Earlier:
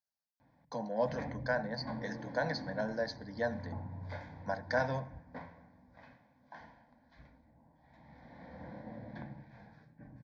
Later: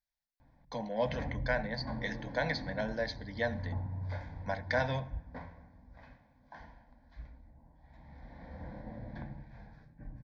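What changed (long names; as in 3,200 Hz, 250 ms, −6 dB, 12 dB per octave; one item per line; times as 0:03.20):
speech: add flat-topped bell 2,700 Hz +12.5 dB 1.1 octaves
master: remove high-pass filter 130 Hz 12 dB per octave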